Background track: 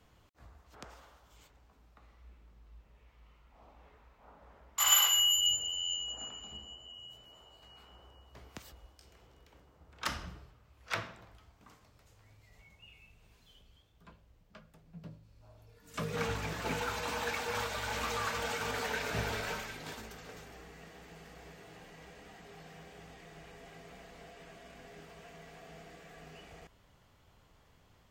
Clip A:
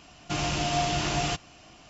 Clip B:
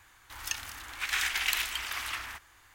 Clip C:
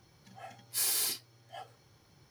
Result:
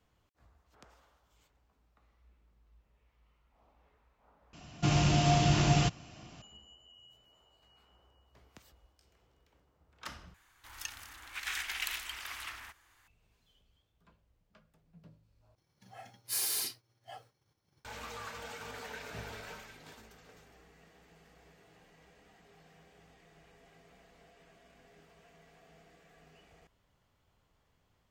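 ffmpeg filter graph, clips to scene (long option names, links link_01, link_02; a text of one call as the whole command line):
ffmpeg -i bed.wav -i cue0.wav -i cue1.wav -i cue2.wav -filter_complex "[0:a]volume=-9dB[link_01];[1:a]equalizer=frequency=130:width=0.68:gain=10[link_02];[3:a]agate=range=-33dB:threshold=-55dB:ratio=3:release=100:detection=peak[link_03];[link_01]asplit=4[link_04][link_05][link_06][link_07];[link_04]atrim=end=4.534[link_08];[link_02]atrim=end=1.89,asetpts=PTS-STARTPTS,volume=-3dB[link_09];[link_05]atrim=start=6.416:end=10.344[link_10];[2:a]atrim=end=2.74,asetpts=PTS-STARTPTS,volume=-7.5dB[link_11];[link_06]atrim=start=13.076:end=15.554[link_12];[link_03]atrim=end=2.3,asetpts=PTS-STARTPTS,volume=-2.5dB[link_13];[link_07]atrim=start=17.846[link_14];[link_08][link_09]acrossfade=duration=0.004:curve1=hsin:curve2=hsin[link_15];[link_15][link_10]acrossfade=duration=0.004:curve1=hsin:curve2=hsin[link_16];[link_16][link_11]acrossfade=duration=0.004:curve1=hsin:curve2=hsin[link_17];[link_17][link_12]acrossfade=duration=0.004:curve1=hsin:curve2=hsin[link_18];[link_18][link_13]acrossfade=duration=0.004:curve1=hsin:curve2=hsin[link_19];[link_19][link_14]acrossfade=duration=0.004:curve1=hsin:curve2=hsin" out.wav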